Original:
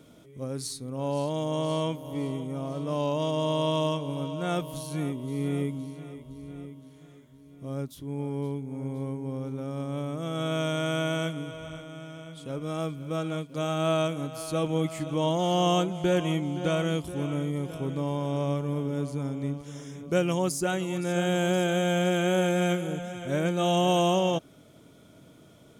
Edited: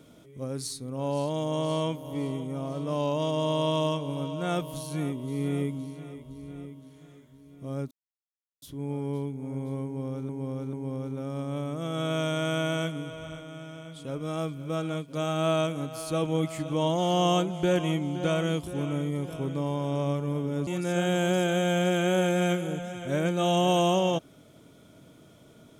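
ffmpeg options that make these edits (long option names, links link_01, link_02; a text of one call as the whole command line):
ffmpeg -i in.wav -filter_complex "[0:a]asplit=5[link_01][link_02][link_03][link_04][link_05];[link_01]atrim=end=7.91,asetpts=PTS-STARTPTS,afade=type=out:start_time=7.906:duration=0.004:curve=hsin,apad=pad_dur=0.71[link_06];[link_02]atrim=start=7.91:end=9.582,asetpts=PTS-STARTPTS,afade=type=in:duration=0.004:curve=hsin[link_07];[link_03]atrim=start=9.138:end=9.582[link_08];[link_04]atrim=start=9.138:end=19.082[link_09];[link_05]atrim=start=20.868[link_10];[link_06][link_07]concat=n=2:v=0:a=1[link_11];[link_11][link_08]acrossfade=duration=0.004:curve1=hsin:curve2=hsin[link_12];[link_12][link_09]acrossfade=duration=0.004:curve1=hsin:curve2=hsin[link_13];[link_13][link_10]acrossfade=duration=0.004:curve1=hsin:curve2=hsin" out.wav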